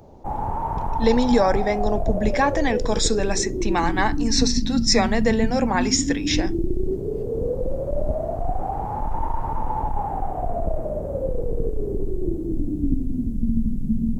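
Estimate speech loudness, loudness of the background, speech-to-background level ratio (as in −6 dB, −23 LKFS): −22.5 LKFS, −27.0 LKFS, 4.5 dB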